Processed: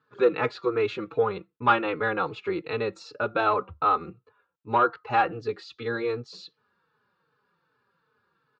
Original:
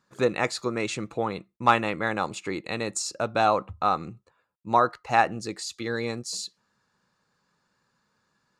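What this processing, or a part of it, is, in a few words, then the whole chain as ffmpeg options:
barber-pole flanger into a guitar amplifier: -filter_complex "[0:a]asplit=2[link_01][link_02];[link_02]adelay=4.1,afreqshift=-2.6[link_03];[link_01][link_03]amix=inputs=2:normalize=1,asoftclip=type=tanh:threshold=-14.5dB,highpass=97,equalizer=frequency=210:width_type=q:width=4:gain=-8,equalizer=frequency=440:width_type=q:width=4:gain=8,equalizer=frequency=650:width_type=q:width=4:gain=-6,equalizer=frequency=1400:width_type=q:width=4:gain=6,equalizer=frequency=2000:width_type=q:width=4:gain=-5,lowpass=frequency=3600:width=0.5412,lowpass=frequency=3600:width=1.3066,volume=3dB"

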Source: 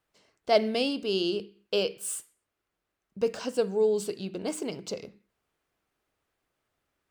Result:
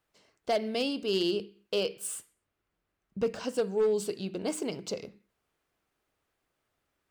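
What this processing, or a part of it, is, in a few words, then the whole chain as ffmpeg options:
limiter into clipper: -filter_complex "[0:a]asettb=1/sr,asplit=3[link_01][link_02][link_03];[link_01]atrim=end=2.074[link_04];[link_02]atrim=start=2.07:end=3.44,asetpts=PTS-STARTPTS,afade=type=in:duration=0.004:curve=qsin,afade=type=out:start_time=1.366:duration=0.004:curve=qsin,bass=frequency=250:gain=6,treble=frequency=4000:gain=-4[link_05];[link_03]atrim=start=3.436[link_06];[link_04][link_05]acrossfade=duration=0.004:curve1=hsin:curve2=qsin[link_07];[link_07][link_06]acrossfade=duration=0.004:curve1=qsin:curve2=hsin,alimiter=limit=-17.5dB:level=0:latency=1:release=392,asoftclip=type=hard:threshold=-21dB"

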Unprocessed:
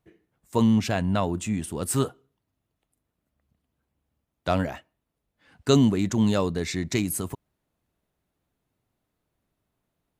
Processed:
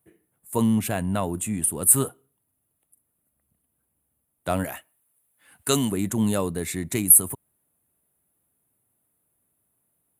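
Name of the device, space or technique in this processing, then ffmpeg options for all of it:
budget condenser microphone: -filter_complex "[0:a]highpass=73,highshelf=frequency=7600:width_type=q:width=3:gain=13.5,asettb=1/sr,asplit=3[link_01][link_02][link_03];[link_01]atrim=end=4.644[link_04];[link_02]atrim=start=4.64:end=5.92,asetpts=PTS-STARTPTS,afade=type=in:duration=0.004:curve=qsin,afade=type=out:start_time=1.276:duration=0.004:curve=qsin,tiltshelf=frequency=760:gain=-6[link_05];[link_03]atrim=start=5.916[link_06];[link_04][link_05]acrossfade=duration=0.004:curve1=hsin:curve2=qsin[link_07];[link_07][link_06]acrossfade=duration=0.004:curve1=qsin:curve2=hsin,volume=-1dB"

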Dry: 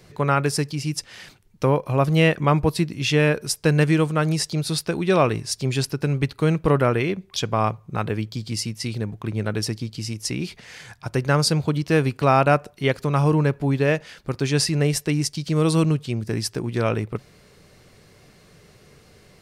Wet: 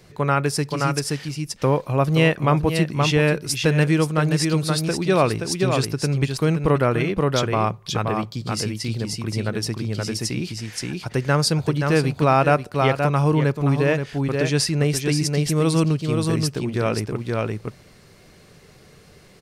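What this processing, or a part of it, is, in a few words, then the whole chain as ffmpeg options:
ducked delay: -filter_complex "[0:a]asplit=3[link_01][link_02][link_03];[link_02]adelay=525,volume=-2dB[link_04];[link_03]apad=whole_len=879321[link_05];[link_04][link_05]sidechaincompress=threshold=-22dB:ratio=8:attack=21:release=329[link_06];[link_01][link_06]amix=inputs=2:normalize=0"

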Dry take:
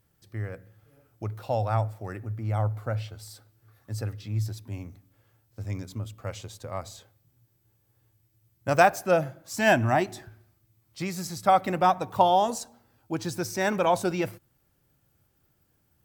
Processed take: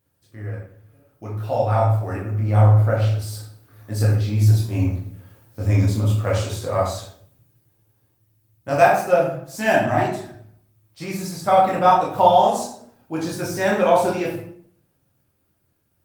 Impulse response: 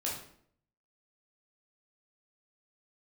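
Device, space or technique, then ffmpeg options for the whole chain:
far-field microphone of a smart speaker: -filter_complex "[1:a]atrim=start_sample=2205[link_01];[0:a][link_01]afir=irnorm=-1:irlink=0,highpass=frequency=87:poles=1,dynaudnorm=framelen=210:gausssize=17:maxgain=14dB,volume=-1dB" -ar 48000 -c:a libopus -b:a 32k

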